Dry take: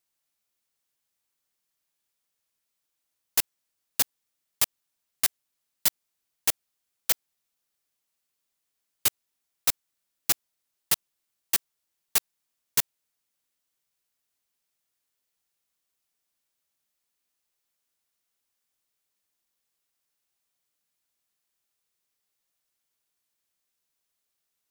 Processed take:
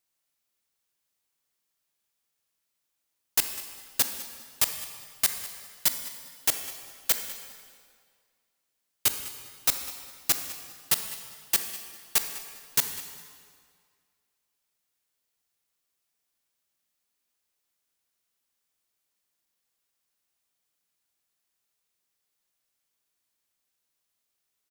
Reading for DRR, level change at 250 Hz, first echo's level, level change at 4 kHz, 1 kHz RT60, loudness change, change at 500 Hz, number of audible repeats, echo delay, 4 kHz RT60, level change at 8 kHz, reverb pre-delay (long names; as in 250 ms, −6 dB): 6.5 dB, +1.0 dB, −16.5 dB, +0.5 dB, 2.0 s, −0.5 dB, +1.0 dB, 1, 201 ms, 1.7 s, +0.5 dB, 23 ms